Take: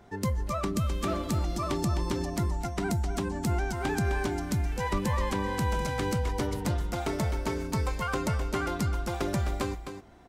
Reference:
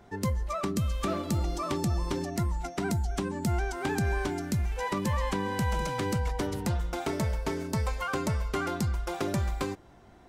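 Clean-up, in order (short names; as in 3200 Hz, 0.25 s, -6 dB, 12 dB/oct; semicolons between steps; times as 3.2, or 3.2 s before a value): 4.92–5.04 HPF 140 Hz 24 dB/oct; inverse comb 0.258 s -8.5 dB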